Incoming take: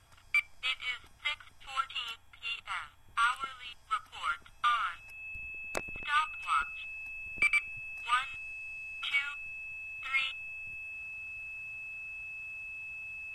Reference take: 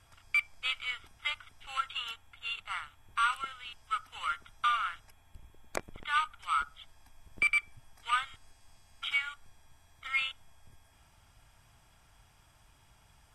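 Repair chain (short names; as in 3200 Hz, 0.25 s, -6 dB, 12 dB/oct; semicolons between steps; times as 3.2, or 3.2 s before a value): clip repair -17.5 dBFS; notch 2600 Hz, Q 30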